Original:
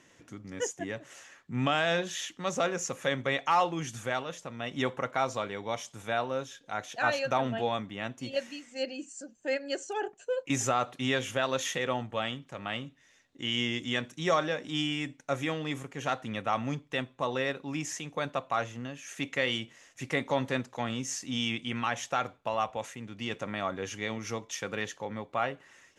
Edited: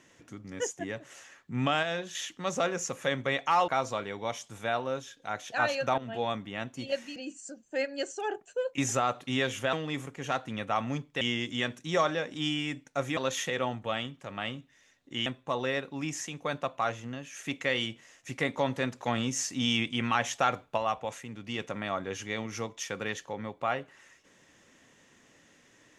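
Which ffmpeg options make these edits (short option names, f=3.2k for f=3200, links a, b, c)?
-filter_complex "[0:a]asplit=12[a][b][c][d][e][f][g][h][i][j][k][l];[a]atrim=end=1.832[m];[b]atrim=start=1.828:end=2.152,asetpts=PTS-STARTPTS,volume=-5dB[n];[c]atrim=start=2.148:end=3.682[o];[d]atrim=start=5.118:end=7.42,asetpts=PTS-STARTPTS,afade=t=out:st=2.298:d=0.004:c=hsin:silence=0.199526[p];[e]atrim=start=7.42:end=8.602,asetpts=PTS-STARTPTS,afade=t=in:d=0.3:silence=0.199526[q];[f]atrim=start=8.878:end=11.452[r];[g]atrim=start=15.498:end=16.982[s];[h]atrim=start=13.538:end=15.502[t];[i]atrim=start=11.448:end=13.542[u];[j]atrim=start=16.978:end=20.642[v];[k]atrim=start=20.638:end=22.502,asetpts=PTS-STARTPTS,volume=3.5dB[w];[l]atrim=start=22.498[x];[m][n]acrossfade=d=0.004:c1=hsin:c2=hsin[y];[y][o]acrossfade=d=0.004:c1=hsin:c2=hsin[z];[p][q]concat=n=2:v=0:a=1[aa];[z][aa]acrossfade=d=0.004:c1=hsin:c2=hsin[ab];[ab][r]acrossfade=d=0.004:c1=hsin:c2=hsin[ac];[ac][s]acrossfade=d=0.004:c1=hsin:c2=hsin[ad];[ad][t]acrossfade=d=0.004:c1=hsin:c2=hsin[ae];[ae][u]acrossfade=d=0.004:c1=hsin:c2=hsin[af];[af][v]acrossfade=d=0.004:c1=hsin:c2=hsin[ag];[ag][w]acrossfade=d=0.004:c1=hsin:c2=hsin[ah];[ah][x]acrossfade=d=0.004:c1=hsin:c2=hsin"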